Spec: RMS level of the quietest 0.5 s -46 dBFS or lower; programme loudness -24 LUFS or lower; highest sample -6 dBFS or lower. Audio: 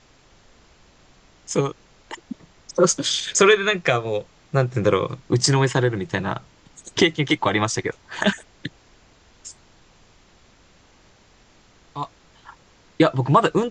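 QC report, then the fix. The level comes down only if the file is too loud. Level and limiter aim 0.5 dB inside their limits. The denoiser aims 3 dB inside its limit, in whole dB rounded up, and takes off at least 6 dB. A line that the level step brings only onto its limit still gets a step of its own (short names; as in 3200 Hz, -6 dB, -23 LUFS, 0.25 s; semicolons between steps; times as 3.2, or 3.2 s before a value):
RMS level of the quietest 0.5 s -54 dBFS: OK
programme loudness -21.0 LUFS: fail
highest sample -4.5 dBFS: fail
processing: gain -3.5 dB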